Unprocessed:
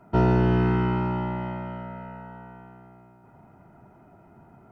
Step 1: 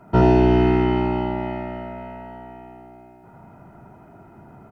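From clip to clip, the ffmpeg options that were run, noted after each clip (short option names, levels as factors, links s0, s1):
-af "aecho=1:1:78:0.708,volume=1.78"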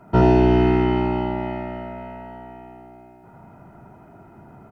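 -af anull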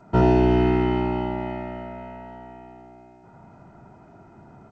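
-af "volume=0.75" -ar 16000 -c:a g722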